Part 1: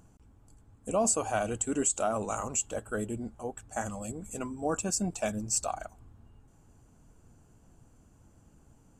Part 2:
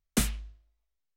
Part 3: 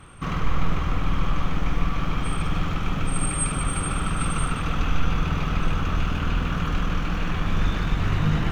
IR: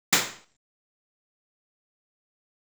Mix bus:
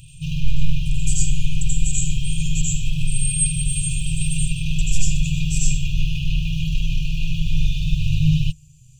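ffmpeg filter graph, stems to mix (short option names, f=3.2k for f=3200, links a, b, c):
-filter_complex "[0:a]acompressor=mode=upward:threshold=-37dB:ratio=2.5,volume=-2.5dB,asplit=2[a][b];[b]volume=-12dB[c];[2:a]aecho=1:1:6.9:0.63,volume=3dB[d];[3:a]atrim=start_sample=2205[e];[c][e]afir=irnorm=-1:irlink=0[f];[a][d][f]amix=inputs=3:normalize=0,afftfilt=real='re*(1-between(b*sr/4096,170,2400))':imag='im*(1-between(b*sr/4096,170,2400))':win_size=4096:overlap=0.75"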